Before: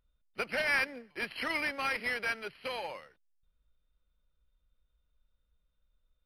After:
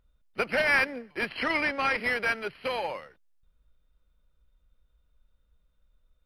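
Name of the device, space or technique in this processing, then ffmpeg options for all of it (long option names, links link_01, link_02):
behind a face mask: -filter_complex "[0:a]asettb=1/sr,asplit=3[link_01][link_02][link_03];[link_01]atrim=end=1.294[link_04];[link_02]atrim=start=1.29:end=1.98,asetpts=PTS-STARTPTS,afade=type=in:duration=0.004:curve=qsin,afade=type=out:start_time=0.686:duration=0.004:curve=qsin,lowpass=8000[link_05];[link_03]atrim=start=1.976[link_06];[link_04][link_05]acrossfade=duration=0.004:curve1=hsin:curve2=qsin[link_07];[link_07][link_06]acrossfade=duration=0.004:curve1=qsin:curve2=hsin,highshelf=frequency=2600:gain=-7,volume=8dB"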